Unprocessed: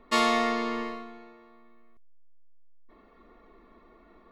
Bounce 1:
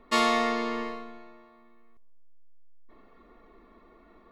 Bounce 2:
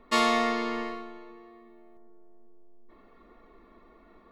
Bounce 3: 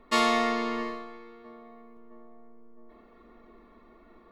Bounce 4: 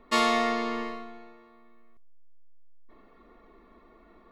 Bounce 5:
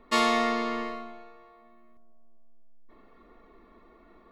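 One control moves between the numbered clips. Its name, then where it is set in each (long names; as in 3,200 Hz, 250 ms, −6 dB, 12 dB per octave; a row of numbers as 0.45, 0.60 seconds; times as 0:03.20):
feedback echo with a low-pass in the loop, delay time: 135, 391, 662, 70, 249 milliseconds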